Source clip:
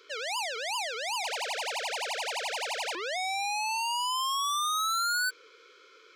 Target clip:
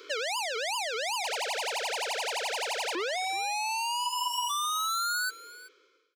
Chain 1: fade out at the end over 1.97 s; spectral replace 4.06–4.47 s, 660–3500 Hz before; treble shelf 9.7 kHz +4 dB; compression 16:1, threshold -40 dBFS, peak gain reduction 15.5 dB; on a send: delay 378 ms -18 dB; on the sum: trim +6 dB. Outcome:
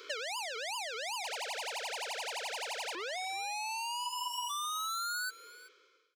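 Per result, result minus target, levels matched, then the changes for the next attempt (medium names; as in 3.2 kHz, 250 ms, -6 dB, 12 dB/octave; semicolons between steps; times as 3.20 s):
compression: peak gain reduction +6 dB; 250 Hz band -5.0 dB
change: compression 16:1, threshold -33 dBFS, peak gain reduction 9 dB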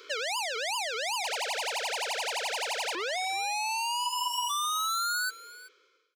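250 Hz band -5.0 dB
add after spectral replace: resonant high-pass 270 Hz, resonance Q 2.2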